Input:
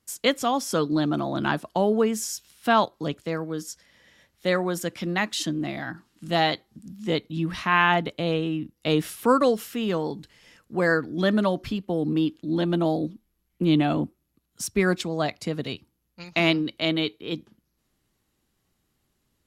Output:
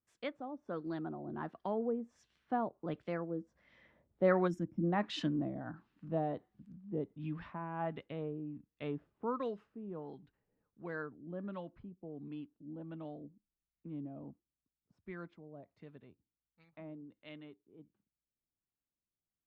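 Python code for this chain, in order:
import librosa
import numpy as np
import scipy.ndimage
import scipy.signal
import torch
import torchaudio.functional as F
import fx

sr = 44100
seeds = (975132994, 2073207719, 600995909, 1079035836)

y = fx.doppler_pass(x, sr, speed_mps=21, closest_m=21.0, pass_at_s=4.57)
y = fx.filter_lfo_lowpass(y, sr, shape='sine', hz=1.4, low_hz=510.0, high_hz=2600.0, q=0.93)
y = fx.spec_box(y, sr, start_s=4.48, length_s=0.36, low_hz=360.0, high_hz=5100.0, gain_db=-18)
y = F.gain(torch.from_numpy(y), -4.5).numpy()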